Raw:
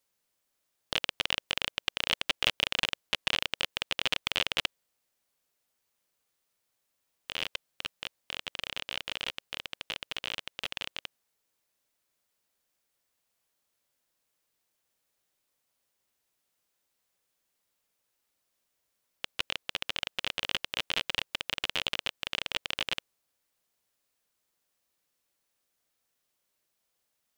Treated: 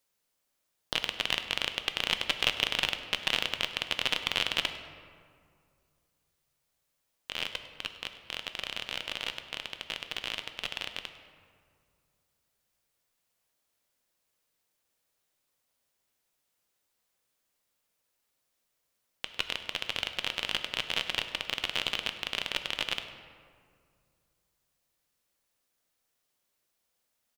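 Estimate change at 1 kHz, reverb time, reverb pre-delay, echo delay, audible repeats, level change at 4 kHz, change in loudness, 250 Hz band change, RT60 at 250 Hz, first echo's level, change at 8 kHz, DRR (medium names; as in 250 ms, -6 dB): +1.0 dB, 2.2 s, 4 ms, 101 ms, 1, +0.5 dB, +0.5 dB, +1.0 dB, 2.6 s, -18.0 dB, +0.5 dB, 7.5 dB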